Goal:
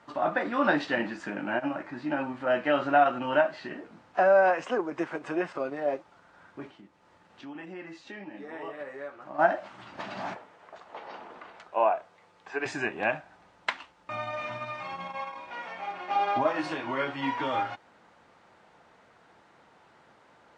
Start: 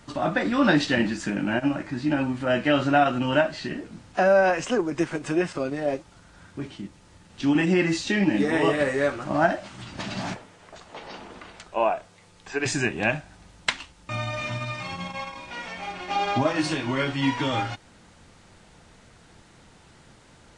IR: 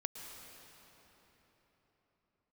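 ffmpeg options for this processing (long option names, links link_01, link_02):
-filter_complex "[0:a]asplit=3[link_01][link_02][link_03];[link_01]afade=type=out:start_time=6.7:duration=0.02[link_04];[link_02]acompressor=threshold=-44dB:ratio=2,afade=type=in:start_time=6.7:duration=0.02,afade=type=out:start_time=9.38:duration=0.02[link_05];[link_03]afade=type=in:start_time=9.38:duration=0.02[link_06];[link_04][link_05][link_06]amix=inputs=3:normalize=0,bandpass=frequency=910:width_type=q:width=0.81:csg=0"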